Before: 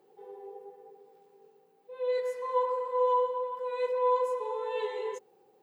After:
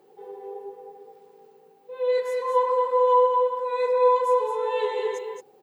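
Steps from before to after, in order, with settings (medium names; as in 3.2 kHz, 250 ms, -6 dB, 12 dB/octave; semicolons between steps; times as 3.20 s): 3.57–4.16 s: band-stop 3 kHz, Q 9.2; on a send: delay 222 ms -6 dB; on the sum: trim +6.5 dB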